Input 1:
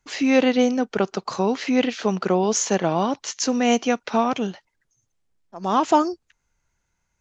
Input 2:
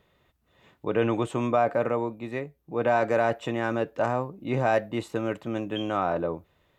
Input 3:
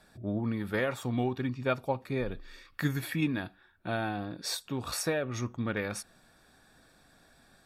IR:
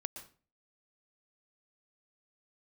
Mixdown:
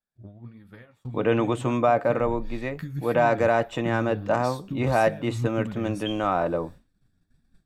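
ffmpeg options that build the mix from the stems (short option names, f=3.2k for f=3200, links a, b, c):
-filter_complex "[1:a]bandreject=f=400:w=12,agate=range=-16dB:threshold=-57dB:ratio=16:detection=peak,adelay=300,volume=2dB,asplit=2[a][b];[b]volume=-22.5dB[c];[2:a]acompressor=threshold=-40dB:ratio=16,asubboost=boost=10.5:cutoff=200,flanger=delay=3.7:depth=7.6:regen=38:speed=1.6:shape=sinusoidal,volume=2dB,asplit=2[d][e];[e]volume=-13.5dB[f];[3:a]atrim=start_sample=2205[g];[c][f]amix=inputs=2:normalize=0[h];[h][g]afir=irnorm=-1:irlink=0[i];[a][d][i]amix=inputs=3:normalize=0,agate=range=-33dB:threshold=-36dB:ratio=3:detection=peak"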